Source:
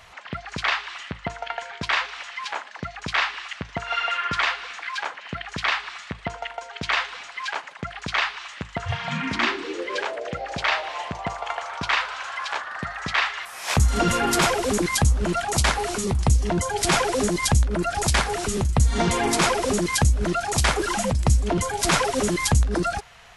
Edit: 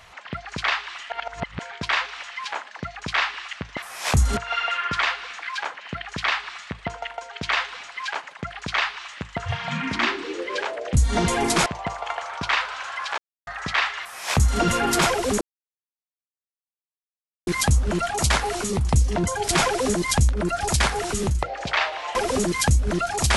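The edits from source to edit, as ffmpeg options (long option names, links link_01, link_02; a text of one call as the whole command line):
ffmpeg -i in.wav -filter_complex "[0:a]asplit=12[link_01][link_02][link_03][link_04][link_05][link_06][link_07][link_08][link_09][link_10][link_11][link_12];[link_01]atrim=end=1.102[link_13];[link_02]atrim=start=1.098:end=1.602,asetpts=PTS-STARTPTS,areverse[link_14];[link_03]atrim=start=1.598:end=3.772[link_15];[link_04]atrim=start=13.398:end=14.002[link_16];[link_05]atrim=start=3.768:end=10.342[link_17];[link_06]atrim=start=18.768:end=19.492[link_18];[link_07]atrim=start=11.058:end=12.58,asetpts=PTS-STARTPTS,afade=type=out:start_time=1.518:duration=0.004:curve=hsin[link_19];[link_08]atrim=start=12.58:end=12.87,asetpts=PTS-STARTPTS,volume=0[link_20];[link_09]atrim=start=12.87:end=14.81,asetpts=PTS-STARTPTS,afade=type=in:duration=0.004:curve=hsin,afade=type=out:start_time=1.936:duration=0.004:curve=hsin,apad=pad_dur=2.06[link_21];[link_10]atrim=start=14.81:end=18.772,asetpts=PTS-STARTPTS,afade=type=in:duration=0.004:curve=hsin[link_22];[link_11]atrim=start=10.338:end=11.062[link_23];[link_12]atrim=start=19.488[link_24];[link_13][link_14]acrossfade=duration=0.004:curve1=hsin:curve2=hsin[link_25];[link_25][link_15]acrossfade=duration=0.004:curve1=hsin:curve2=hsin[link_26];[link_26][link_16]acrossfade=duration=0.004:curve1=hsin:curve2=hsin[link_27];[link_27][link_17]acrossfade=duration=0.004:curve1=hsin:curve2=hsin[link_28];[link_28][link_18]acrossfade=duration=0.004:curve1=hsin:curve2=hsin[link_29];[link_19][link_20][link_21][link_22]concat=n=4:v=0:a=1[link_30];[link_29][link_30]acrossfade=duration=0.004:curve1=hsin:curve2=hsin[link_31];[link_31][link_23]acrossfade=duration=0.004:curve1=hsin:curve2=hsin[link_32];[link_32][link_24]acrossfade=duration=0.004:curve1=hsin:curve2=hsin" out.wav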